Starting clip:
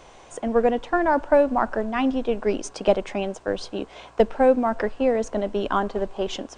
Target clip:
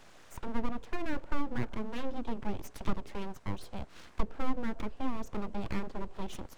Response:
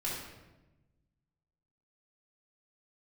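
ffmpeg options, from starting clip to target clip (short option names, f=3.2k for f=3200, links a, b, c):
-filter_complex "[0:a]aeval=exprs='abs(val(0))':c=same,acrossover=split=420[a][b];[b]acompressor=threshold=-43dB:ratio=2[c];[a][c]amix=inputs=2:normalize=0,volume=-6dB"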